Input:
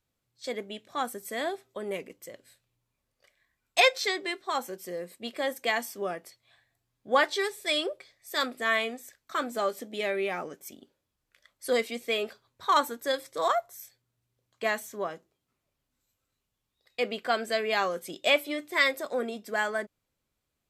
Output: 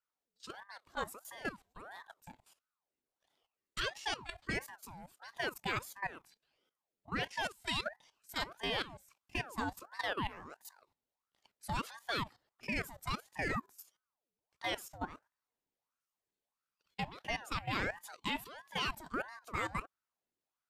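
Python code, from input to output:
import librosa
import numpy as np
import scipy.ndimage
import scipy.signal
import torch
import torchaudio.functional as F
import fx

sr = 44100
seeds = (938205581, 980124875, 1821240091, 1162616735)

y = fx.level_steps(x, sr, step_db=15)
y = fx.ring_lfo(y, sr, carrier_hz=850.0, swing_pct=65, hz=1.5)
y = y * 10.0 ** (-2.0 / 20.0)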